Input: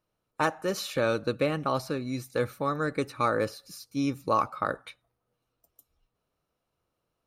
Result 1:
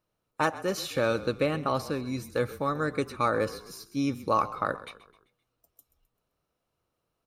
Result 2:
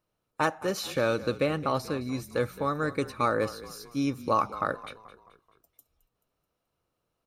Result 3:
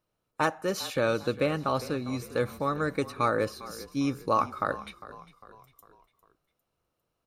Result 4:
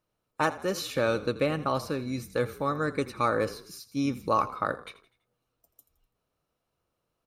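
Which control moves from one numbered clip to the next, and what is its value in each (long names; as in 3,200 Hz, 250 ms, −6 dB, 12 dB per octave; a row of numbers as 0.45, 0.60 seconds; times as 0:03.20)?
echo with shifted repeats, delay time: 130, 216, 402, 83 milliseconds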